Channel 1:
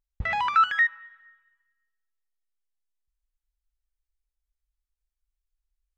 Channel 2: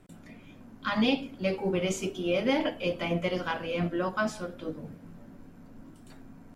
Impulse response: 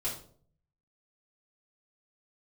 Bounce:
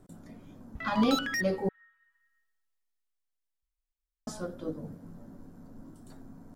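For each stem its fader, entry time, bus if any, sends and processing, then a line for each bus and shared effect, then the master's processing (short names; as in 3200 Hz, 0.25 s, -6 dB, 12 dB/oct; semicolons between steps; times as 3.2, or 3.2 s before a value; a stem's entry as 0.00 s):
-8.0 dB, 0.55 s, no send, wavefolder -19.5 dBFS; AGC gain up to 11.5 dB; auto duck -13 dB, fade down 1.85 s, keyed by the second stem
+0.5 dB, 0.00 s, muted 1.69–4.27, no send, bell 2500 Hz -14 dB 0.98 oct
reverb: off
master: dry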